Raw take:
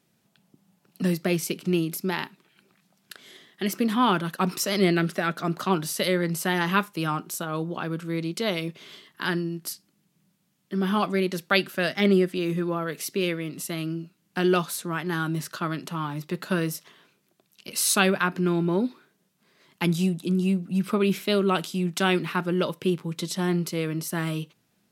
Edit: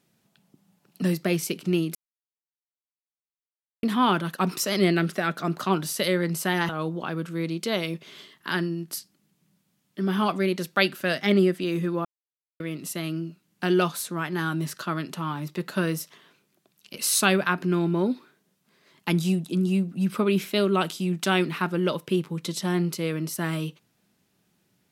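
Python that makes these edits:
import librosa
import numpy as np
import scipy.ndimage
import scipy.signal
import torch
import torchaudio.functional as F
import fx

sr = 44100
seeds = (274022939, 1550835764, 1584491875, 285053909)

y = fx.edit(x, sr, fx.silence(start_s=1.95, length_s=1.88),
    fx.cut(start_s=6.69, length_s=0.74),
    fx.silence(start_s=12.79, length_s=0.55), tone=tone)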